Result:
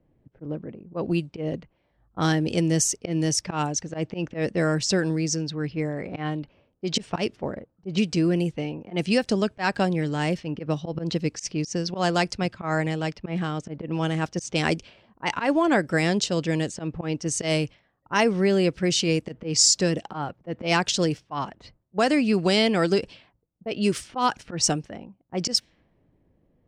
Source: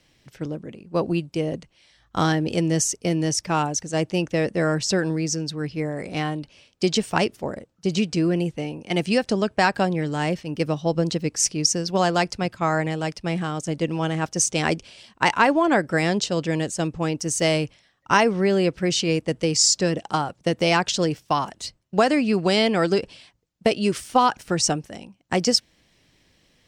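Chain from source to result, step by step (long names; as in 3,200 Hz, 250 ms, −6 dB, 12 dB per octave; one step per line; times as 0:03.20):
volume swells 104 ms
dynamic equaliser 880 Hz, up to −3 dB, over −32 dBFS, Q 0.75
low-pass that shuts in the quiet parts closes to 590 Hz, open at −20 dBFS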